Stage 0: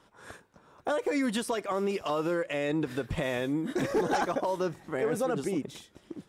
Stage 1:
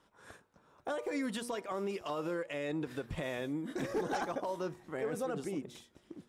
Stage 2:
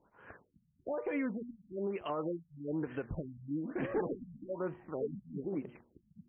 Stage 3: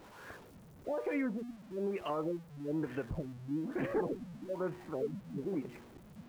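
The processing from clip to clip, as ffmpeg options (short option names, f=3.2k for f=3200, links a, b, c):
-af "bandreject=f=119.9:t=h:w=4,bandreject=f=239.8:t=h:w=4,bandreject=f=359.7:t=h:w=4,bandreject=f=479.6:t=h:w=4,bandreject=f=599.5:t=h:w=4,bandreject=f=719.4:t=h:w=4,bandreject=f=839.3:t=h:w=4,bandreject=f=959.2:t=h:w=4,bandreject=f=1.0791k:t=h:w=4,bandreject=f=1.199k:t=h:w=4,bandreject=f=1.3189k:t=h:w=4,volume=-7dB"
-af "afftfilt=real='re*lt(b*sr/1024,210*pow(3300/210,0.5+0.5*sin(2*PI*1.1*pts/sr)))':imag='im*lt(b*sr/1024,210*pow(3300/210,0.5+0.5*sin(2*PI*1.1*pts/sr)))':win_size=1024:overlap=0.75,volume=1dB"
-af "aeval=exprs='val(0)+0.5*0.00299*sgn(val(0))':c=same"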